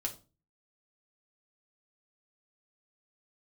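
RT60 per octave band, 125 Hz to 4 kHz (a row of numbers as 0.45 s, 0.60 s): 0.55 s, 0.45 s, 0.35 s, 0.30 s, 0.25 s, 0.25 s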